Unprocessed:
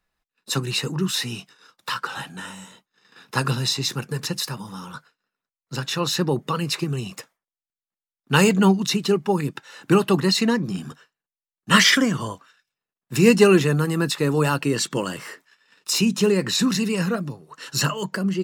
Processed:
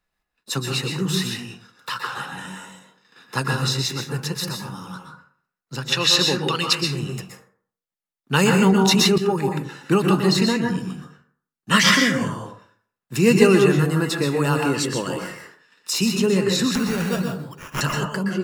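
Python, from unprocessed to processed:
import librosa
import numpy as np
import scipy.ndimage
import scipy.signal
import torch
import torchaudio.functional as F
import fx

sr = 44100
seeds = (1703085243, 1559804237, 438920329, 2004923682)

y = fx.weighting(x, sr, curve='D', at=(5.92, 6.73))
y = fx.sample_hold(y, sr, seeds[0], rate_hz=4200.0, jitter_pct=0, at=(16.75, 17.81))
y = fx.rev_plate(y, sr, seeds[1], rt60_s=0.52, hf_ratio=0.5, predelay_ms=110, drr_db=1.5)
y = fx.env_flatten(y, sr, amount_pct=100, at=(8.72, 9.18))
y = y * librosa.db_to_amplitude(-1.5)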